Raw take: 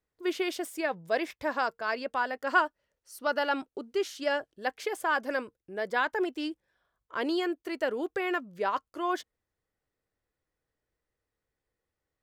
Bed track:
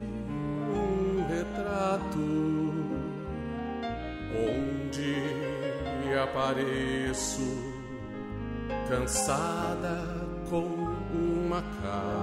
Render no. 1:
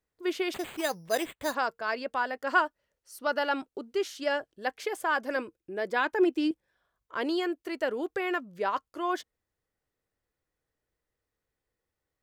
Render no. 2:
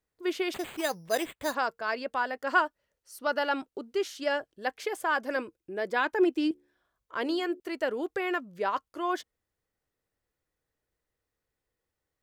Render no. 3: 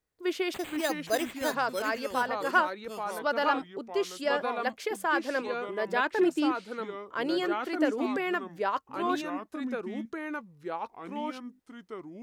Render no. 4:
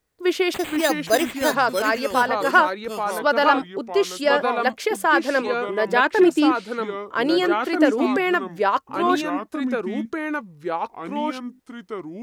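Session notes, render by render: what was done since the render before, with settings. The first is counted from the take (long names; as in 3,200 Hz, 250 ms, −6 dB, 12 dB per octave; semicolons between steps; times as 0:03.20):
0:00.54–0:01.55: bad sample-rate conversion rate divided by 8×, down none, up hold; 0:05.36–0:06.51: hollow resonant body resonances 330/2,500 Hz, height 10 dB
0:06.51–0:07.60: hum removal 71.92 Hz, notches 8
delay with pitch and tempo change per echo 424 ms, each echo −3 semitones, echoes 2, each echo −6 dB
level +9.5 dB; brickwall limiter −3 dBFS, peak gain reduction 1.5 dB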